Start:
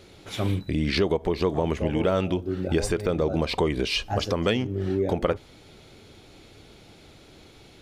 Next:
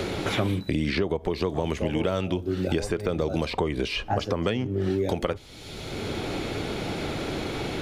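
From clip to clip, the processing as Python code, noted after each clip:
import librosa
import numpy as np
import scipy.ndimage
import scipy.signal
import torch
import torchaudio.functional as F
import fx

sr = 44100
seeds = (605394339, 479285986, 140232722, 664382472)

y = fx.band_squash(x, sr, depth_pct=100)
y = F.gain(torch.from_numpy(y), -2.0).numpy()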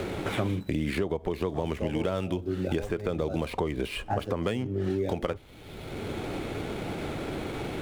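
y = scipy.signal.medfilt(x, 9)
y = F.gain(torch.from_numpy(y), -3.0).numpy()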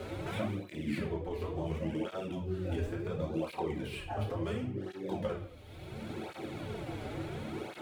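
y = fx.room_shoebox(x, sr, seeds[0], volume_m3=110.0, walls='mixed', distance_m=0.97)
y = fx.flanger_cancel(y, sr, hz=0.71, depth_ms=6.1)
y = F.gain(torch.from_numpy(y), -8.0).numpy()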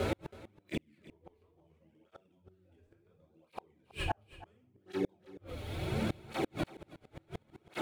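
y = fx.gate_flip(x, sr, shuts_db=-30.0, range_db=-41)
y = y + 10.0 ** (-18.5 / 20.0) * np.pad(y, (int(324 * sr / 1000.0), 0))[:len(y)]
y = F.gain(torch.from_numpy(y), 9.5).numpy()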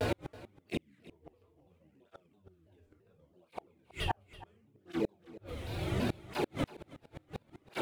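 y = fx.vibrato_shape(x, sr, shape='saw_down', rate_hz=3.0, depth_cents=250.0)
y = F.gain(torch.from_numpy(y), 1.0).numpy()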